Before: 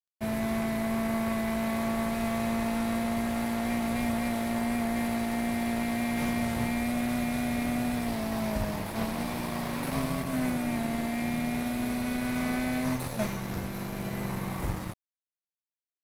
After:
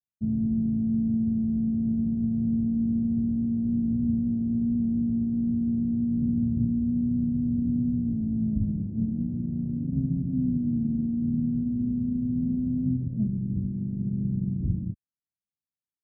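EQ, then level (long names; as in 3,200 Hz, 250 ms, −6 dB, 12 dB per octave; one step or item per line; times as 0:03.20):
high-pass filter 64 Hz
inverse Chebyshev low-pass filter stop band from 1,400 Hz, stop band 80 dB
+8.0 dB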